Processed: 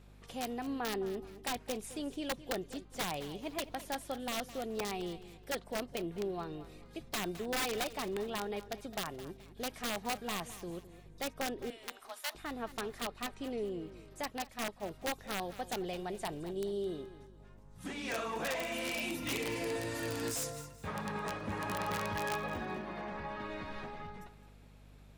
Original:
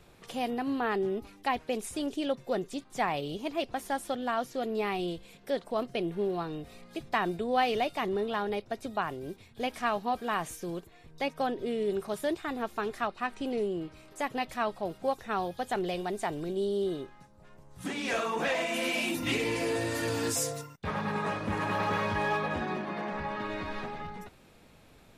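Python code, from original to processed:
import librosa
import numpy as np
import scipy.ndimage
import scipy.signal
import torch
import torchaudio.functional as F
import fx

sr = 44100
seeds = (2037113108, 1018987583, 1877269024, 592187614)

p1 = fx.add_hum(x, sr, base_hz=50, snr_db=18)
p2 = (np.mod(10.0 ** (22.0 / 20.0) * p1 + 1.0, 2.0) - 1.0) / 10.0 ** (22.0 / 20.0)
p3 = fx.steep_highpass(p2, sr, hz=700.0, slope=36, at=(11.7, 12.35))
p4 = p3 + fx.echo_feedback(p3, sr, ms=213, feedback_pct=33, wet_db=-15, dry=0)
p5 = fx.upward_expand(p4, sr, threshold_db=-41.0, expansion=1.5, at=(14.3, 14.83))
y = p5 * librosa.db_to_amplitude(-6.5)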